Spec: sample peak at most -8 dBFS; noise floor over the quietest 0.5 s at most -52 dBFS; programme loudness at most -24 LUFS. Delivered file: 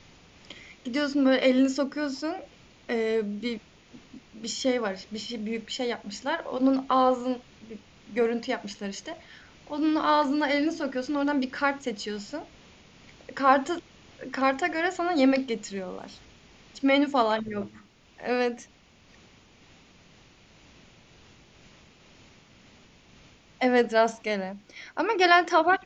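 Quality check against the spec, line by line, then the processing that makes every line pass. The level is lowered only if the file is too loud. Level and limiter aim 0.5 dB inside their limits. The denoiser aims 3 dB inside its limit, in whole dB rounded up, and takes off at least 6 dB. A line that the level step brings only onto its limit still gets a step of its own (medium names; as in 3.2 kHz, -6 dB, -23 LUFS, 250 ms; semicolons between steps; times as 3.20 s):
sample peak -5.5 dBFS: fail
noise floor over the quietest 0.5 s -57 dBFS: pass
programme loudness -26.5 LUFS: pass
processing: peak limiter -8.5 dBFS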